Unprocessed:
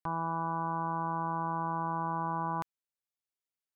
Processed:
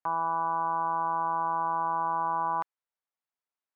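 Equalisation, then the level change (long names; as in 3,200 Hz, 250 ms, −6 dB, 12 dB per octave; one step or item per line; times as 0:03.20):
resonant band-pass 990 Hz, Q 1
+6.0 dB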